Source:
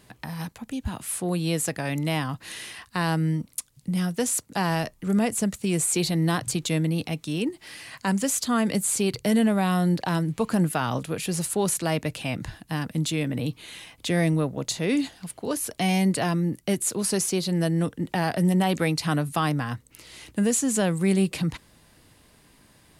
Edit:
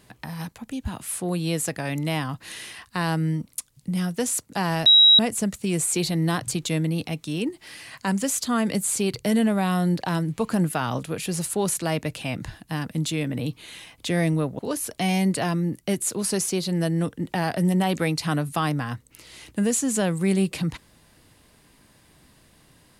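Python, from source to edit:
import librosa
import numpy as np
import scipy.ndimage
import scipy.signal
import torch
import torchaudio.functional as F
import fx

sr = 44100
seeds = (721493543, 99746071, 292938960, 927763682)

y = fx.edit(x, sr, fx.bleep(start_s=4.86, length_s=0.33, hz=3850.0, db=-10.0),
    fx.cut(start_s=14.59, length_s=0.8), tone=tone)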